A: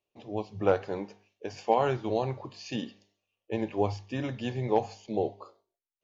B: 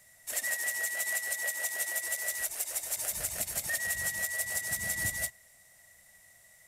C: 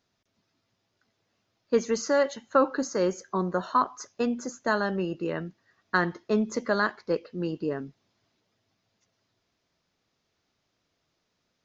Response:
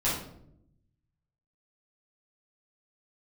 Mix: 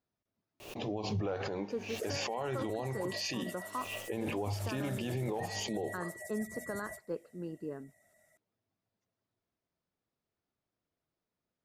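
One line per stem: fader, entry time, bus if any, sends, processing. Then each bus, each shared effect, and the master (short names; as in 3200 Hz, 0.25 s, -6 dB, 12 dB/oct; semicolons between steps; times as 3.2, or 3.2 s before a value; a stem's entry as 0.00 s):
+2.0 dB, 0.60 s, no send, backwards sustainer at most 69 dB/s
-14.0 dB, 1.70 s, no send, spectral gate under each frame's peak -25 dB strong; limiter -25.5 dBFS, peak gain reduction 7 dB; small resonant body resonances 270/380/600/1300 Hz, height 18 dB, ringing for 35 ms
-10.5 dB, 0.00 s, no send, high shelf 2100 Hz -12 dB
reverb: off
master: limiter -27 dBFS, peak gain reduction 18.5 dB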